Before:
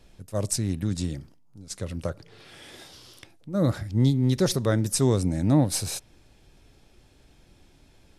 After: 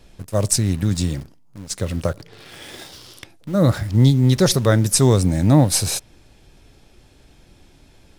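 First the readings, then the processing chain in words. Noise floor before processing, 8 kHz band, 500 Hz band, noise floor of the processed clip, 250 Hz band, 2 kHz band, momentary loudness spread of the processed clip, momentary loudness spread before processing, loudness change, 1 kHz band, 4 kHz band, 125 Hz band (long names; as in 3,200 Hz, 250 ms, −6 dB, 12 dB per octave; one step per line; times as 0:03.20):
−58 dBFS, +9.0 dB, +7.0 dB, −52 dBFS, +6.0 dB, +9.0 dB, 17 LU, 18 LU, +7.5 dB, +8.5 dB, +9.0 dB, +8.0 dB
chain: dynamic equaliser 300 Hz, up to −4 dB, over −33 dBFS, Q 1.1
in parallel at −8 dB: bit reduction 7 bits
on the sum: level +6 dB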